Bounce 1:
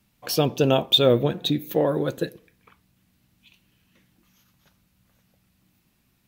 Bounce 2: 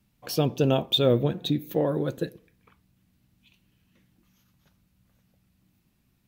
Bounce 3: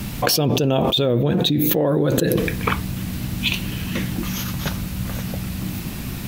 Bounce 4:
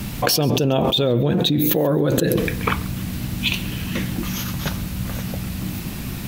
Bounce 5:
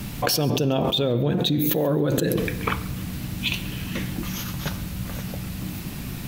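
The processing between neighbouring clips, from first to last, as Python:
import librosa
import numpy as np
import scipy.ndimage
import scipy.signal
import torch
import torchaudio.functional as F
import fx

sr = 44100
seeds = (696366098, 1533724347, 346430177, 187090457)

y1 = fx.low_shelf(x, sr, hz=360.0, db=6.5)
y1 = F.gain(torch.from_numpy(y1), -6.0).numpy()
y2 = fx.env_flatten(y1, sr, amount_pct=100)
y3 = fx.echo_feedback(y2, sr, ms=137, feedback_pct=27, wet_db=-21.0)
y4 = fx.room_shoebox(y3, sr, seeds[0], volume_m3=2600.0, walls='mixed', distance_m=0.33)
y4 = F.gain(torch.from_numpy(y4), -4.0).numpy()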